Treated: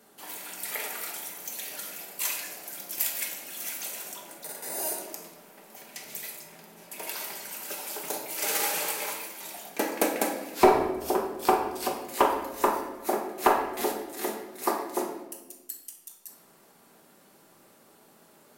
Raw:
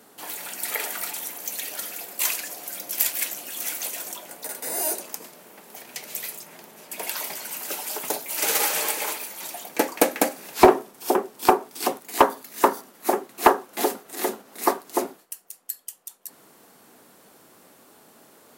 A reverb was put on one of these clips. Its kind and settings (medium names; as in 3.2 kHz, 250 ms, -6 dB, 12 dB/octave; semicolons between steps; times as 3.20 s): simulated room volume 550 m³, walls mixed, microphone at 1.2 m; trim -7 dB